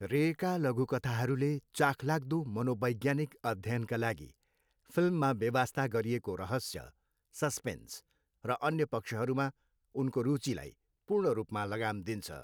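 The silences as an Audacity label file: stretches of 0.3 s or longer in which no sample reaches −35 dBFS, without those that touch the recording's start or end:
4.180000	4.970000	silence
6.790000	7.380000	silence
7.950000	8.450000	silence
9.490000	9.960000	silence
10.670000	11.100000	silence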